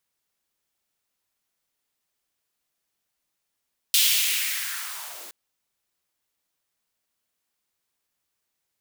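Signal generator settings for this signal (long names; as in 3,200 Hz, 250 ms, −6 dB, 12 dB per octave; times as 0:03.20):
filter sweep on noise white, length 1.37 s highpass, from 3,300 Hz, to 270 Hz, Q 2.4, linear, gain ramp −23 dB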